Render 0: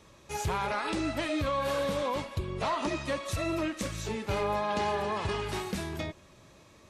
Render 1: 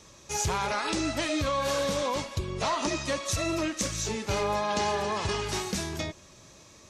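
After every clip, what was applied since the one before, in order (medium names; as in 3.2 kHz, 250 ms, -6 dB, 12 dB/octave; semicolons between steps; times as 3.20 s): peaking EQ 6.1 kHz +11 dB 1 oct; trim +1.5 dB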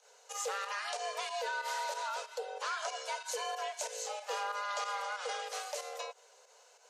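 volume shaper 93 bpm, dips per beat 2, -9 dB, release 89 ms; frequency shift +390 Hz; trim -8.5 dB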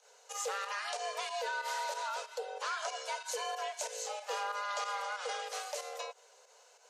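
no audible change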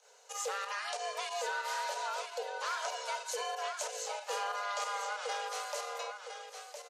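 delay 1011 ms -7.5 dB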